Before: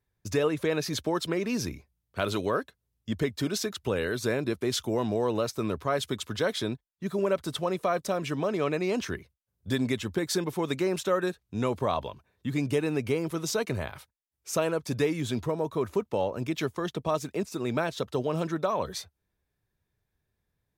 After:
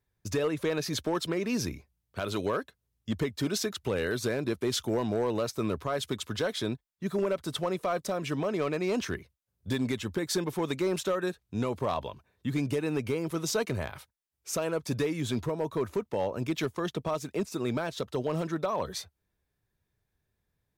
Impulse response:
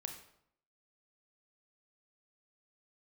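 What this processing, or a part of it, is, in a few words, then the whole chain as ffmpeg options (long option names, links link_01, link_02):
limiter into clipper: -af "alimiter=limit=-18dB:level=0:latency=1:release=242,asoftclip=type=hard:threshold=-21.5dB"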